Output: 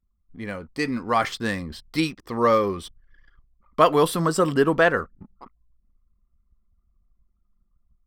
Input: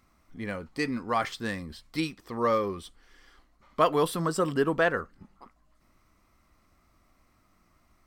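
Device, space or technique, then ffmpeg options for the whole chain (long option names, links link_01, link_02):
voice memo with heavy noise removal: -af "anlmdn=0.001,dynaudnorm=framelen=610:gausssize=3:maxgain=5dB,volume=1.5dB"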